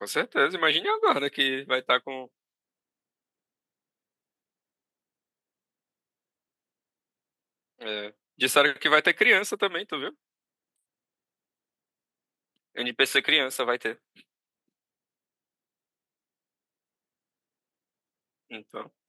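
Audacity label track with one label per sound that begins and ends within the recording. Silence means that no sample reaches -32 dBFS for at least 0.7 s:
7.820000	10.090000	sound
12.770000	13.920000	sound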